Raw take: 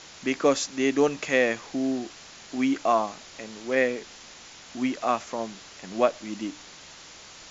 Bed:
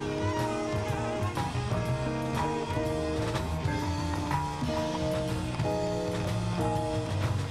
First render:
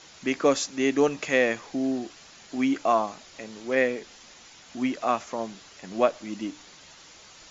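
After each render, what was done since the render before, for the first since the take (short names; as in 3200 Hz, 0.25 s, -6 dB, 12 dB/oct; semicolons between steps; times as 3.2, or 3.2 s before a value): denoiser 6 dB, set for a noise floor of -47 dBFS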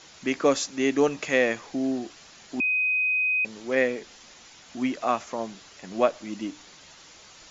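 2.6–3.45 bleep 2510 Hz -21 dBFS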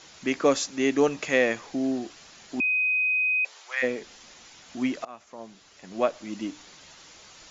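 3.08–3.82 HPF 360 Hz -> 1100 Hz 24 dB/oct; 5.05–6.41 fade in, from -23.5 dB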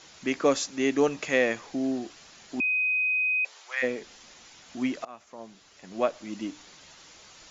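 gain -1.5 dB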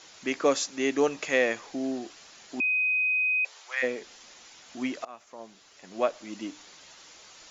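tone controls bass -7 dB, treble +1 dB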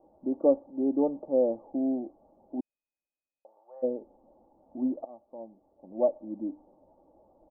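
steep low-pass 810 Hz 48 dB/oct; comb 3.5 ms, depth 51%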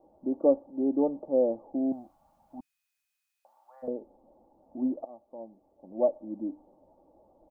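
1.92–3.88 EQ curve 150 Hz 0 dB, 280 Hz -12 dB, 410 Hz -22 dB, 730 Hz -2 dB, 1500 Hz +13 dB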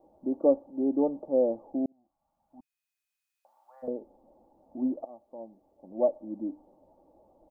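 1.86–3.89 fade in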